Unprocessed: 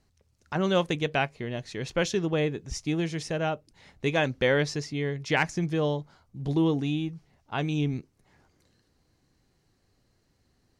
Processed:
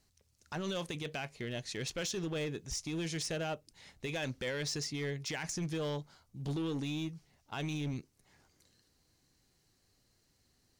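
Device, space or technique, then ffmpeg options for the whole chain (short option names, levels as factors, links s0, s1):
limiter into clipper: -af "highshelf=f=3000:g=11.5,alimiter=limit=0.0944:level=0:latency=1:release=29,asoftclip=type=hard:threshold=0.0531,volume=0.501"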